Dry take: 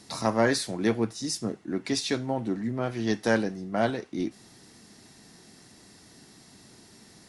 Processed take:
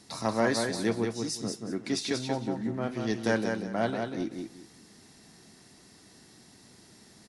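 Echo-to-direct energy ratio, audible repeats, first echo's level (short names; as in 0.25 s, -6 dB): -4.5 dB, 3, -5.0 dB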